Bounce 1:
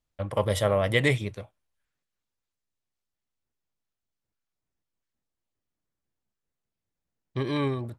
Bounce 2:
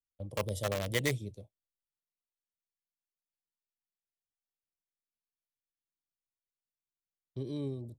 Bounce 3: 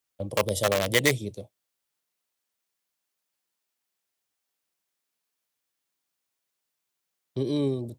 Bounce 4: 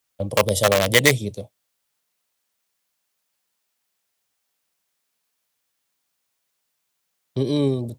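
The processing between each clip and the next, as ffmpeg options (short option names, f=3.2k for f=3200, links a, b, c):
-filter_complex "[0:a]acrossover=split=220|610|3800[a][b][c][d];[c]acrusher=bits=3:mix=0:aa=0.000001[e];[a][b][e][d]amix=inputs=4:normalize=0,agate=range=-12dB:threshold=-43dB:ratio=16:detection=peak,volume=-8.5dB"
-filter_complex "[0:a]highpass=f=240:p=1,asplit=2[a][b];[b]alimiter=level_in=3.5dB:limit=-24dB:level=0:latency=1:release=302,volume=-3.5dB,volume=1dB[c];[a][c]amix=inputs=2:normalize=0,volume=7dB"
-af "equalizer=f=340:t=o:w=0.39:g=-5,volume=7dB"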